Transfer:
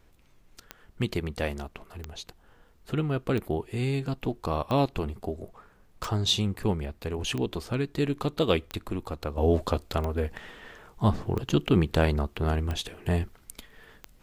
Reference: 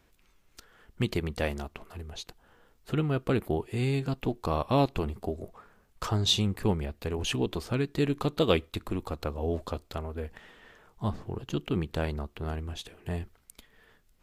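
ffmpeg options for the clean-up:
-af "adeclick=t=4,agate=range=-21dB:threshold=-49dB,asetnsamples=n=441:p=0,asendcmd='9.37 volume volume -7.5dB',volume=0dB"

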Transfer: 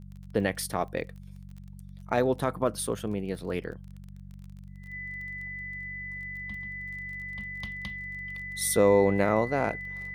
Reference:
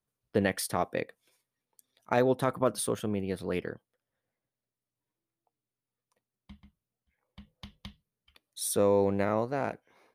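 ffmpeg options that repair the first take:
-af "adeclick=t=4,bandreject=f=47.5:t=h:w=4,bandreject=f=95:t=h:w=4,bandreject=f=142.5:t=h:w=4,bandreject=f=190:t=h:w=4,bandreject=f=2k:w=30,asetnsamples=n=441:p=0,asendcmd='4.62 volume volume -4dB',volume=0dB"

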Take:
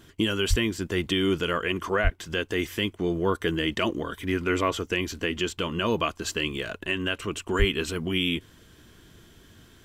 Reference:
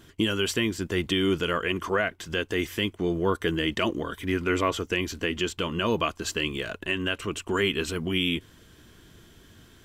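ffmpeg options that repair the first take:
-filter_complex "[0:a]asplit=3[a][b][c];[a]afade=t=out:st=0.49:d=0.02[d];[b]highpass=f=140:w=0.5412,highpass=f=140:w=1.3066,afade=t=in:st=0.49:d=0.02,afade=t=out:st=0.61:d=0.02[e];[c]afade=t=in:st=0.61:d=0.02[f];[d][e][f]amix=inputs=3:normalize=0,asplit=3[g][h][i];[g]afade=t=out:st=2.03:d=0.02[j];[h]highpass=f=140:w=0.5412,highpass=f=140:w=1.3066,afade=t=in:st=2.03:d=0.02,afade=t=out:st=2.15:d=0.02[k];[i]afade=t=in:st=2.15:d=0.02[l];[j][k][l]amix=inputs=3:normalize=0,asplit=3[m][n][o];[m]afade=t=out:st=7.58:d=0.02[p];[n]highpass=f=140:w=0.5412,highpass=f=140:w=1.3066,afade=t=in:st=7.58:d=0.02,afade=t=out:st=7.7:d=0.02[q];[o]afade=t=in:st=7.7:d=0.02[r];[p][q][r]amix=inputs=3:normalize=0"

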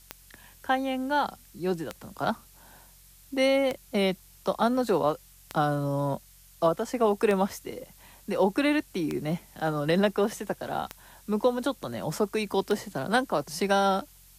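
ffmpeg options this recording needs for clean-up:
-af "adeclick=t=4,bandreject=f=45.3:t=h:w=4,bandreject=f=90.6:t=h:w=4,bandreject=f=135.9:t=h:w=4,bandreject=f=181.2:t=h:w=4,afftdn=nr=17:nf=-54"

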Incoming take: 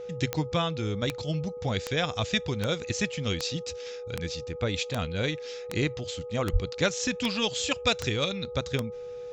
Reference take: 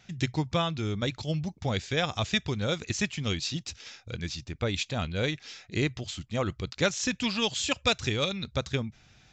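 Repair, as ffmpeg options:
-filter_complex "[0:a]adeclick=t=4,bandreject=f=417:t=h:w=4,bandreject=f=834:t=h:w=4,bandreject=f=1.251k:t=h:w=4,bandreject=f=490:w=30,asplit=3[a][b][c];[a]afade=t=out:st=6.52:d=0.02[d];[b]highpass=f=140:w=0.5412,highpass=f=140:w=1.3066,afade=t=in:st=6.52:d=0.02,afade=t=out:st=6.64:d=0.02[e];[c]afade=t=in:st=6.64:d=0.02[f];[d][e][f]amix=inputs=3:normalize=0"

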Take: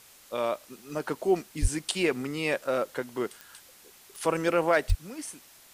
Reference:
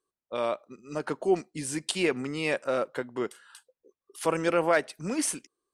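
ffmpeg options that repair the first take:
-filter_complex "[0:a]adeclick=t=4,asplit=3[a][b][c];[a]afade=t=out:st=1.61:d=0.02[d];[b]highpass=f=140:w=0.5412,highpass=f=140:w=1.3066,afade=t=in:st=1.61:d=0.02,afade=t=out:st=1.73:d=0.02[e];[c]afade=t=in:st=1.73:d=0.02[f];[d][e][f]amix=inputs=3:normalize=0,asplit=3[g][h][i];[g]afade=t=out:st=4.88:d=0.02[j];[h]highpass=f=140:w=0.5412,highpass=f=140:w=1.3066,afade=t=in:st=4.88:d=0.02,afade=t=out:st=5:d=0.02[k];[i]afade=t=in:st=5:d=0.02[l];[j][k][l]amix=inputs=3:normalize=0,afwtdn=0.0022,asetnsamples=n=441:p=0,asendcmd='4.98 volume volume 10.5dB',volume=0dB"

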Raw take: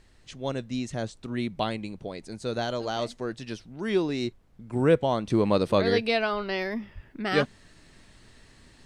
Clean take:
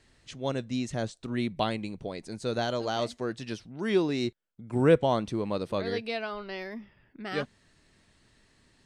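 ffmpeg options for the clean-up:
-filter_complex "[0:a]asplit=3[a][b][c];[a]afade=t=out:st=6.94:d=0.02[d];[b]highpass=f=140:w=0.5412,highpass=f=140:w=1.3066,afade=t=in:st=6.94:d=0.02,afade=t=out:st=7.06:d=0.02[e];[c]afade=t=in:st=7.06:d=0.02[f];[d][e][f]amix=inputs=3:normalize=0,agate=range=-21dB:threshold=-47dB,asetnsamples=n=441:p=0,asendcmd='5.3 volume volume -8dB',volume=0dB"

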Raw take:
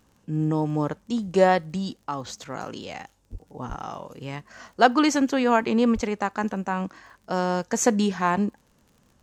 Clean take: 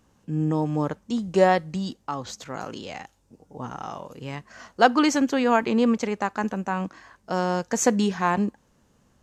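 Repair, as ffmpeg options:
-filter_complex "[0:a]adeclick=t=4,asplit=3[a][b][c];[a]afade=t=out:st=3.31:d=0.02[d];[b]highpass=f=140:w=0.5412,highpass=f=140:w=1.3066,afade=t=in:st=3.31:d=0.02,afade=t=out:st=3.43:d=0.02[e];[c]afade=t=in:st=3.43:d=0.02[f];[d][e][f]amix=inputs=3:normalize=0,asplit=3[g][h][i];[g]afade=t=out:st=3.68:d=0.02[j];[h]highpass=f=140:w=0.5412,highpass=f=140:w=1.3066,afade=t=in:st=3.68:d=0.02,afade=t=out:st=3.8:d=0.02[k];[i]afade=t=in:st=3.8:d=0.02[l];[j][k][l]amix=inputs=3:normalize=0,asplit=3[m][n][o];[m]afade=t=out:st=5.94:d=0.02[p];[n]highpass=f=140:w=0.5412,highpass=f=140:w=1.3066,afade=t=in:st=5.94:d=0.02,afade=t=out:st=6.06:d=0.02[q];[o]afade=t=in:st=6.06:d=0.02[r];[p][q][r]amix=inputs=3:normalize=0"

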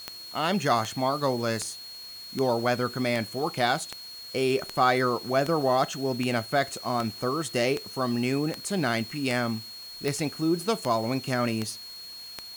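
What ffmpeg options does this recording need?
-af "adeclick=t=4,bandreject=f=4.3k:w=30,afwtdn=0.0032"

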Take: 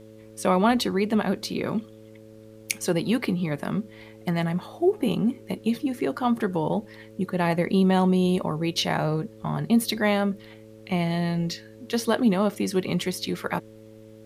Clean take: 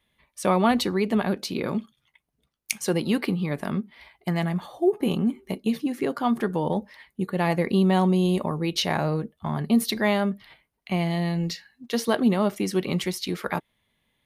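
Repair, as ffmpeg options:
-af "bandreject=f=109.1:t=h:w=4,bandreject=f=218.2:t=h:w=4,bandreject=f=327.3:t=h:w=4,bandreject=f=436.4:t=h:w=4,bandreject=f=545.5:t=h:w=4,agate=range=-21dB:threshold=-39dB"

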